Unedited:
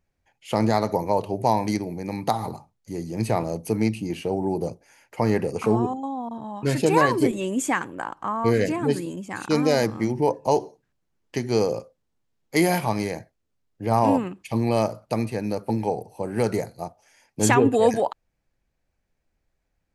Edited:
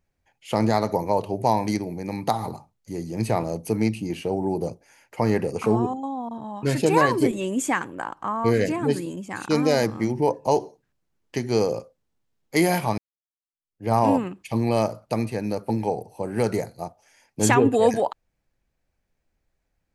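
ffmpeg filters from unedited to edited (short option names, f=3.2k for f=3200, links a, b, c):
-filter_complex "[0:a]asplit=2[a][b];[a]atrim=end=12.98,asetpts=PTS-STARTPTS,afade=t=out:st=12.976:d=0.004:c=hsin[c];[b]atrim=start=12.98,asetpts=PTS-STARTPTS,afade=t=in:d=0.9:c=exp[d];[c][d]concat=n=2:v=0:a=1"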